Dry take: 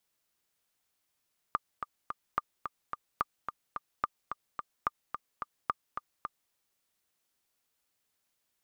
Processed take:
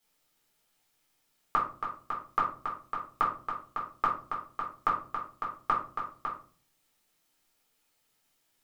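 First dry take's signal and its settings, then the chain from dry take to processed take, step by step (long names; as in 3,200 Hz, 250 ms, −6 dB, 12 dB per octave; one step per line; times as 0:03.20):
click track 217 BPM, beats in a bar 3, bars 6, 1,200 Hz, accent 7.5 dB −14.5 dBFS
parametric band 62 Hz −5.5 dB 2.3 octaves
rectangular room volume 270 cubic metres, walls furnished, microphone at 4 metres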